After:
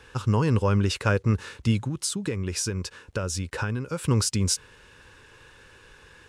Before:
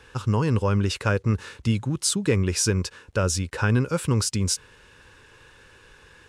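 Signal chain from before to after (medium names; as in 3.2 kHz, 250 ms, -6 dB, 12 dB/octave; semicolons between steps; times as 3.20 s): 1.80–4.04 s: compression 10:1, threshold -25 dBFS, peak gain reduction 9.5 dB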